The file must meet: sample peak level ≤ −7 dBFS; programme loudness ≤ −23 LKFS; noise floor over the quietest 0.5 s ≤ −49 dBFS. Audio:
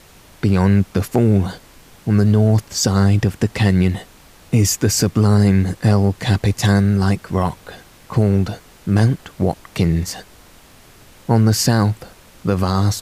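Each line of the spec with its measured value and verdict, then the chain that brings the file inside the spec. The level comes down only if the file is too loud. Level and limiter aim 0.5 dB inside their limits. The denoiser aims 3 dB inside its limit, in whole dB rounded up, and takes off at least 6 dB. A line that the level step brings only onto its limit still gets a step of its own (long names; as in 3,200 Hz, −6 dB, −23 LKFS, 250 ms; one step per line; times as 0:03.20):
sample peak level −4.5 dBFS: out of spec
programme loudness −17.5 LKFS: out of spec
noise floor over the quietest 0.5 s −46 dBFS: out of spec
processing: level −6 dB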